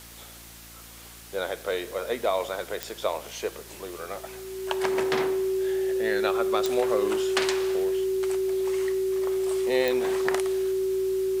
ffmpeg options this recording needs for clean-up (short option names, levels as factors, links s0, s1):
-af "adeclick=t=4,bandreject=f=57.1:t=h:w=4,bandreject=f=114.2:t=h:w=4,bandreject=f=171.3:t=h:w=4,bandreject=f=228.4:t=h:w=4,bandreject=f=285.5:t=h:w=4,bandreject=f=342.6:t=h:w=4,bandreject=f=380:w=30,afwtdn=0.005"